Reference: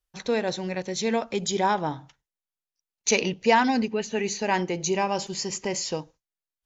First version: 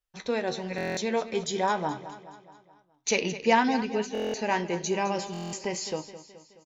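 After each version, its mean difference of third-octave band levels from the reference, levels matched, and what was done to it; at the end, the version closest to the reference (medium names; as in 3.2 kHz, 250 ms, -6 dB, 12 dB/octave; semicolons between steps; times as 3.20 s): 4.0 dB: tone controls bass -2 dB, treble -3 dB; flange 1 Hz, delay 9.4 ms, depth 4.1 ms, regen +63%; feedback delay 212 ms, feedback 53%, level -14 dB; buffer glitch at 0.76/4.13/5.32 s, samples 1024, times 8; trim +2 dB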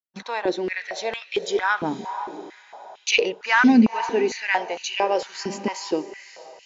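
8.0 dB: gate -44 dBFS, range -17 dB; low-pass 4.8 kHz 12 dB/octave; echo that smears into a reverb 501 ms, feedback 46%, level -14 dB; step-sequenced high-pass 4.4 Hz 230–2800 Hz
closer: first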